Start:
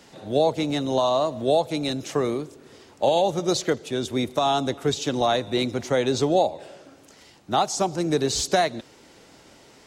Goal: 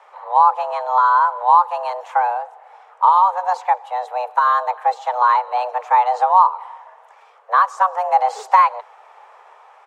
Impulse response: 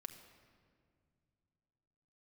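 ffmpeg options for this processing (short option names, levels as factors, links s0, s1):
-af "firequalizer=gain_entry='entry(310,0);entry(460,10);entry(4100,-16)':delay=0.05:min_phase=1,dynaudnorm=f=930:g=3:m=3.76,afreqshift=370,volume=0.891"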